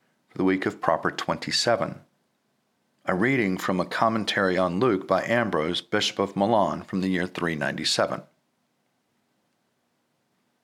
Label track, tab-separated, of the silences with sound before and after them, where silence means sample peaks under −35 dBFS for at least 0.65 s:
1.970000	3.080000	silence